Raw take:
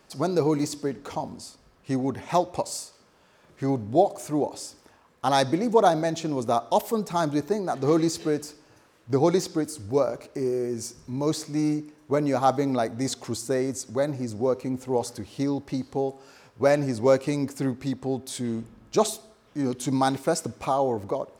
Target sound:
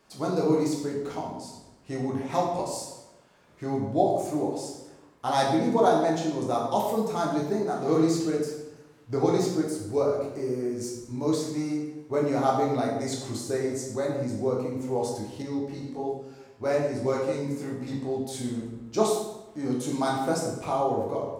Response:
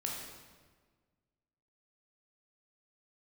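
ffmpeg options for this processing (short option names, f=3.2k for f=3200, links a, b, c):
-filter_complex "[1:a]atrim=start_sample=2205,asetrate=70560,aresample=44100[a];[0:a][a]afir=irnorm=-1:irlink=0,asettb=1/sr,asplit=3[b][c][d];[b]atrim=end=15.424[e];[c]atrim=start=15.42:end=17.88,asetpts=PTS-STARTPTS,afade=t=in:d=0.004:c=qsin,afade=t=out:st=2.456:d=0.004:c=qsin,flanger=delay=15.5:depth=6.1:speed=1.2[f];[d]atrim=start=17.876[g];[e][f]acrossfade=d=0.004:c1=hsin:c2=qsin[h];[h][g]acrossfade=d=0.004:c1=qsin:c2=hsin"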